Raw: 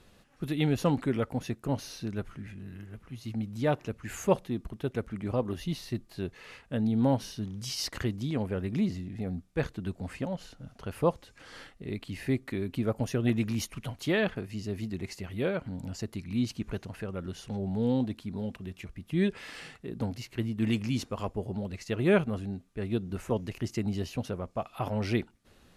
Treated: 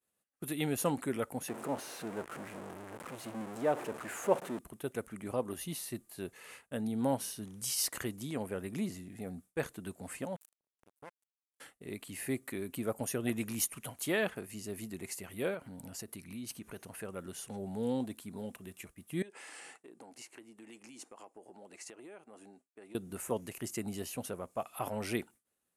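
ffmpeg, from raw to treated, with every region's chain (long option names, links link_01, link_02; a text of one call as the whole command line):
ffmpeg -i in.wav -filter_complex "[0:a]asettb=1/sr,asplit=3[link_01][link_02][link_03];[link_01]atrim=end=1.484[link_04];[link_02]atrim=start=1.48:end=4.59,asetpts=PTS-STARTPTS,afade=type=in:duration=0.004:curve=qsin,afade=type=out:start_time=3.106:duration=0.004:curve=qsin,aeval=exprs='val(0)+0.5*0.0335*sgn(val(0))':channel_layout=same,bandpass=frequency=590:width_type=q:width=0.55[link_05];[link_03]atrim=start=4.586[link_06];[link_04][link_05]acrossfade=duration=0.004:curve1=hsin:curve2=qsin[link_07];[link_07][link_06]acrossfade=duration=0.004:curve1=qsin:curve2=hsin,asettb=1/sr,asplit=3[link_08][link_09][link_10];[link_08]atrim=end=10.364[link_11];[link_09]atrim=start=10.36:end=11.6,asetpts=PTS-STARTPTS,afade=type=in:duration=0.004:curve=qsin,afade=type=out:start_time=1.236:duration=0.004:curve=qsin,bandreject=frequency=1700:width=16,acompressor=threshold=-42dB:ratio=5:attack=3.2:release=140:knee=1:detection=peak,acrusher=bits=5:mix=0:aa=0.5[link_12];[link_10]atrim=start=11.596[link_13];[link_11][link_12]acrossfade=duration=0.004:curve1=hsin:curve2=qsin[link_14];[link_14][link_13]acrossfade=duration=0.004:curve1=qsin:curve2=hsin,asettb=1/sr,asplit=3[link_15][link_16][link_17];[link_15]atrim=end=15.544[link_18];[link_16]atrim=start=15.54:end=16.98,asetpts=PTS-STARTPTS,afade=type=in:duration=0.004:curve=qsin,afade=type=out:start_time=1.436:duration=0.004:curve=qsin,equalizer=frequency=7300:width_type=o:width=0.2:gain=-6.5,acompressor=threshold=-34dB:ratio=3:attack=3.2:release=140:knee=1:detection=peak[link_19];[link_17]atrim=start=16.976[link_20];[link_18][link_19]acrossfade=duration=0.004:curve1=hsin:curve2=qsin[link_21];[link_21][link_20]acrossfade=duration=0.004:curve1=qsin:curve2=hsin,asettb=1/sr,asplit=3[link_22][link_23][link_24];[link_22]atrim=end=19.224[link_25];[link_23]atrim=start=19.22:end=22.95,asetpts=PTS-STARTPTS,afade=type=in:duration=0.004:curve=qsin,afade=type=out:start_time=3.726:duration=0.004:curve=qsin,highpass=310,equalizer=frequency=320:width_type=q:width=4:gain=6,equalizer=frequency=810:width_type=q:width=4:gain=6,equalizer=frequency=3600:width_type=q:width=4:gain=-4,lowpass=frequency=9300:width=0.5412,lowpass=frequency=9300:width=1.3066,acompressor=threshold=-43dB:ratio=10:attack=3.2:release=140:knee=1:detection=peak[link_26];[link_24]atrim=start=22.946[link_27];[link_25][link_26]acrossfade=duration=0.004:curve1=hsin:curve2=qsin[link_28];[link_28][link_27]acrossfade=duration=0.004:curve1=qsin:curve2=hsin,highpass=frequency=360:poles=1,agate=range=-33dB:threshold=-49dB:ratio=3:detection=peak,highshelf=frequency=6700:width_type=q:width=1.5:gain=12,volume=-2dB" out.wav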